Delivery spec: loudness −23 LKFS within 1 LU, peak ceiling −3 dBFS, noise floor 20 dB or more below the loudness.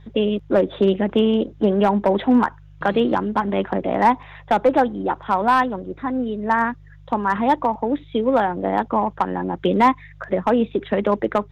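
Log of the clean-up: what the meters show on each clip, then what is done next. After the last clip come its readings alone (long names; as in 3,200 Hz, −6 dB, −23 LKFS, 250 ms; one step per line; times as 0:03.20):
share of clipped samples 0.7%; peaks flattened at −8.0 dBFS; mains hum 50 Hz; hum harmonics up to 150 Hz; level of the hum −43 dBFS; integrated loudness −20.5 LKFS; sample peak −8.0 dBFS; target loudness −23.0 LKFS
→ clipped peaks rebuilt −8 dBFS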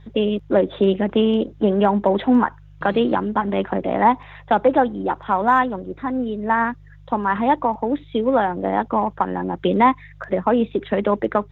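share of clipped samples 0.0%; mains hum 50 Hz; hum harmonics up to 150 Hz; level of the hum −43 dBFS
→ hum removal 50 Hz, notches 3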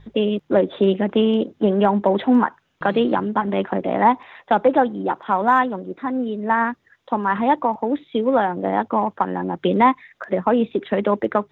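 mains hum none found; integrated loudness −20.5 LKFS; sample peak −3.5 dBFS; target loudness −23.0 LKFS
→ level −2.5 dB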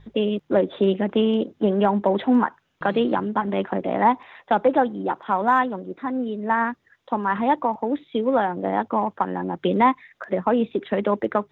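integrated loudness −23.0 LKFS; sample peak −6.0 dBFS; background noise floor −66 dBFS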